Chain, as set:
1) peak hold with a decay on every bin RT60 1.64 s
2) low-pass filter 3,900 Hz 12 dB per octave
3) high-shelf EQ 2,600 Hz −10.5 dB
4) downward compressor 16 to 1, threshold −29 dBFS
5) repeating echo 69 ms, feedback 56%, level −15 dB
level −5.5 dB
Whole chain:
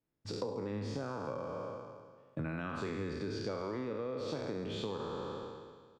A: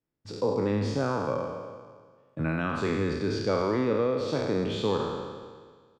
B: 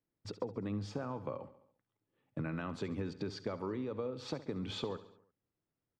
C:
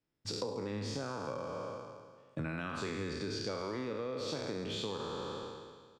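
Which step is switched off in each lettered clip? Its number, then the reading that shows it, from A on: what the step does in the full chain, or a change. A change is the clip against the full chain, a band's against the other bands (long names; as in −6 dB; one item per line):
4, average gain reduction 7.5 dB
1, 2 kHz band −2.5 dB
3, 8 kHz band +7.5 dB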